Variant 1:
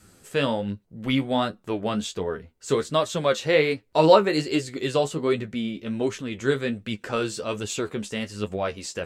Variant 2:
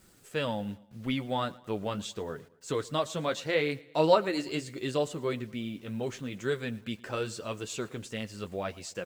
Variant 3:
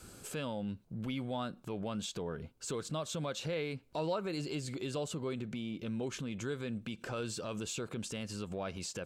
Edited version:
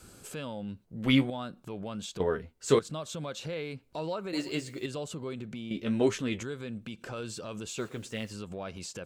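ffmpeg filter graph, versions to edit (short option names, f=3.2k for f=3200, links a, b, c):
-filter_complex "[0:a]asplit=3[a][b][c];[1:a]asplit=2[d][e];[2:a]asplit=6[f][g][h][i][j][k];[f]atrim=end=0.842[l];[a]atrim=start=0.838:end=1.302[m];[g]atrim=start=1.298:end=2.202[n];[b]atrim=start=2.198:end=2.792[o];[h]atrim=start=2.788:end=4.332[p];[d]atrim=start=4.328:end=4.862[q];[i]atrim=start=4.858:end=5.712[r];[c]atrim=start=5.708:end=6.432[s];[j]atrim=start=6.428:end=7.782[t];[e]atrim=start=7.778:end=8.312[u];[k]atrim=start=8.308[v];[l][m]acrossfade=d=0.004:c1=hsin:c2=hsin[w];[w][n]acrossfade=d=0.004:c1=hsin:c2=hsin[x];[x][o]acrossfade=d=0.004:c1=hsin:c2=hsin[y];[y][p]acrossfade=d=0.004:c1=hsin:c2=hsin[z];[z][q]acrossfade=d=0.004:c1=hsin:c2=hsin[aa];[aa][r]acrossfade=d=0.004:c1=hsin:c2=hsin[ab];[ab][s]acrossfade=d=0.004:c1=hsin:c2=hsin[ac];[ac][t]acrossfade=d=0.004:c1=hsin:c2=hsin[ad];[ad][u]acrossfade=d=0.004:c1=hsin:c2=hsin[ae];[ae][v]acrossfade=d=0.004:c1=hsin:c2=hsin"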